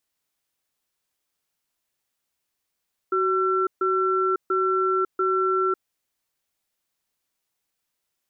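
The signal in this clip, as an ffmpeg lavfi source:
-f lavfi -i "aevalsrc='0.0794*(sin(2*PI*375*t)+sin(2*PI*1350*t))*clip(min(mod(t,0.69),0.55-mod(t,0.69))/0.005,0,1)':d=2.75:s=44100"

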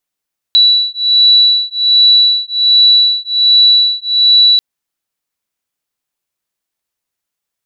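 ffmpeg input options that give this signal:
-f lavfi -i "aevalsrc='0.335*(sin(2*PI*3940*t)+sin(2*PI*3941.3*t))':d=4.04:s=44100"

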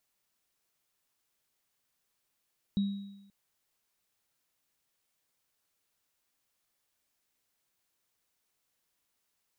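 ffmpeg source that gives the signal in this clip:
-f lavfi -i "aevalsrc='0.0668*pow(10,-3*t/0.93)*sin(2*PI*199*t)+0.00708*pow(10,-3*t/0.98)*sin(2*PI*3820*t)':d=0.53:s=44100"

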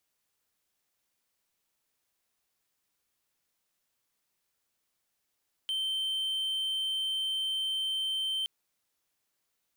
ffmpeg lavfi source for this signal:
-f lavfi -i "aevalsrc='0.0447*(1-4*abs(mod(3110*t+0.25,1)-0.5))':d=2.77:s=44100"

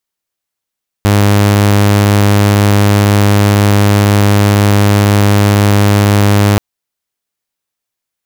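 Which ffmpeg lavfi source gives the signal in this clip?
-f lavfi -i "aevalsrc='0.668*(2*mod(102*t,1)-1)':d=5.53:s=44100"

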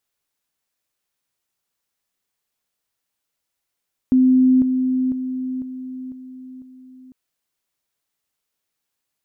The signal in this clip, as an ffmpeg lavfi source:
-f lavfi -i "aevalsrc='pow(10,(-10.5-6*floor(t/0.5))/20)*sin(2*PI*257*t)':d=3:s=44100"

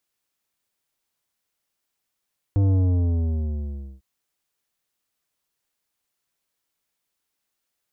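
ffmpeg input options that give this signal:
-f lavfi -i "aevalsrc='0.141*clip((1.45-t)/1.3,0,1)*tanh(3.55*sin(2*PI*100*1.45/log(65/100)*(exp(log(65/100)*t/1.45)-1)))/tanh(3.55)':d=1.45:s=44100"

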